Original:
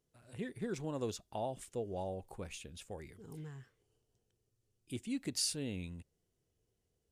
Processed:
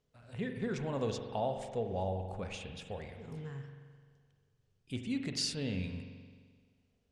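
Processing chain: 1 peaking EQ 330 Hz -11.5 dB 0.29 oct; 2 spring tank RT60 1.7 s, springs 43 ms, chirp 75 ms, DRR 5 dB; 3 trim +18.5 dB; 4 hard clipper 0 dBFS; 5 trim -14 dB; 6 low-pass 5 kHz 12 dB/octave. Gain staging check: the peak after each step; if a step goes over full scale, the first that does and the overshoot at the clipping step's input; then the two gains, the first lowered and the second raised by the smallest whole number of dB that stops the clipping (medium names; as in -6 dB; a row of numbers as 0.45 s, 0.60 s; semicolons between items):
-23.0 dBFS, -23.0 dBFS, -4.5 dBFS, -4.5 dBFS, -18.5 dBFS, -22.5 dBFS; nothing clips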